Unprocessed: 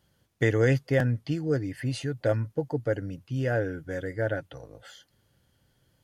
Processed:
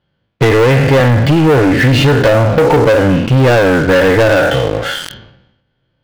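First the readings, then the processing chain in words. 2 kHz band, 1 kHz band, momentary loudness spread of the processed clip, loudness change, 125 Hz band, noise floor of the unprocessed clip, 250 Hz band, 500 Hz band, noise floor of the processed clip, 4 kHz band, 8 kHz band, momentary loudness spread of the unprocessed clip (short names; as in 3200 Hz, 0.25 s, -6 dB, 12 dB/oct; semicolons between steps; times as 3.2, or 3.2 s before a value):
+19.5 dB, +25.5 dB, 6 LU, +18.0 dB, +17.0 dB, -70 dBFS, +19.0 dB, +19.0 dB, -66 dBFS, +25.0 dB, +19.5 dB, 11 LU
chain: spectral trails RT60 0.52 s; LPF 3600 Hz 24 dB/oct; bell 78 Hz -5.5 dB 1 oct; notch 1900 Hz, Q 19; harmonic-percussive split harmonic +6 dB; dynamic EQ 990 Hz, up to +8 dB, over -39 dBFS, Q 1.2; compressor 16:1, threshold -24 dBFS, peak gain reduction 13.5 dB; sample leveller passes 5; sustainer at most 65 dB/s; gain +8 dB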